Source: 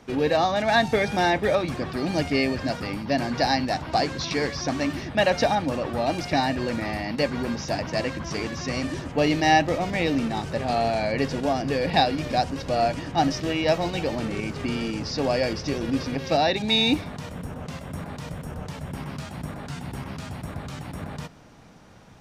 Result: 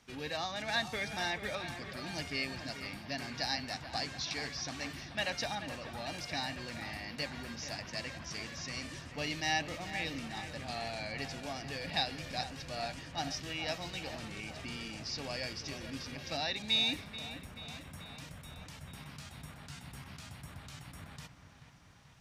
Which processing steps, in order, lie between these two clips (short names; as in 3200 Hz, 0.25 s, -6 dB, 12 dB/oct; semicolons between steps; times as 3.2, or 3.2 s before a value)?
passive tone stack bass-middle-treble 5-5-5; dark delay 0.434 s, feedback 63%, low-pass 3000 Hz, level -10.5 dB